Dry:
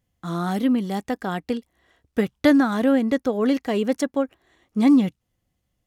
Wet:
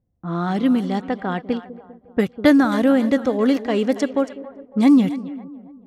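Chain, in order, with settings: split-band echo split 540 Hz, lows 0.198 s, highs 0.277 s, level -14 dB; low-pass opened by the level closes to 590 Hz, open at -16.5 dBFS; gain +2.5 dB

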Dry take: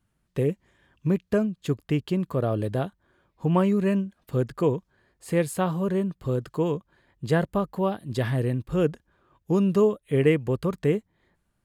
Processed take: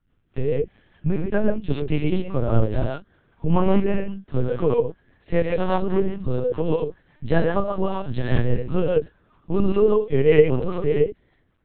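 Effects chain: dynamic EQ 310 Hz, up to -5 dB, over -34 dBFS, Q 1.5; non-linear reverb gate 0.15 s rising, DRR -0.5 dB; harmonic-percussive split harmonic +8 dB; rotary speaker horn 5 Hz; LPC vocoder at 8 kHz pitch kept; gain -1 dB

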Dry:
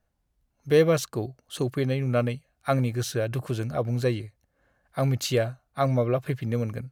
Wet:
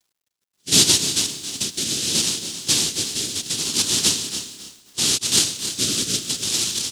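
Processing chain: noise vocoder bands 1; in parallel at +2 dB: compressor, threshold -32 dBFS, peak gain reduction 18 dB; on the sum: rotary speaker horn 0.7 Hz; band shelf 1100 Hz -15 dB 2.5 oct; requantised 12-bit, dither none; on a send: feedback echo 0.3 s, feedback 22%, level -12 dB; on the sum: lo-fi delay 0.271 s, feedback 35%, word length 7-bit, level -12.5 dB; gain +5 dB

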